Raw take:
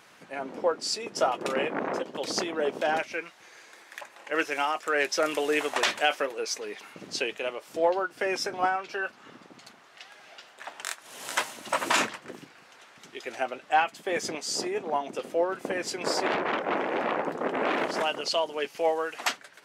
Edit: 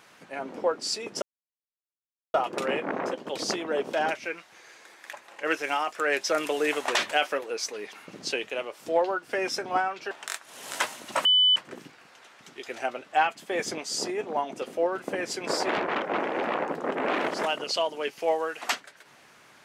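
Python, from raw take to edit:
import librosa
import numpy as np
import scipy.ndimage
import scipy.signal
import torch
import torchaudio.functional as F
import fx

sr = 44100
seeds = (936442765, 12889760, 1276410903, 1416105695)

y = fx.edit(x, sr, fx.insert_silence(at_s=1.22, length_s=1.12),
    fx.cut(start_s=8.99, length_s=1.69),
    fx.bleep(start_s=11.82, length_s=0.31, hz=3000.0, db=-16.5), tone=tone)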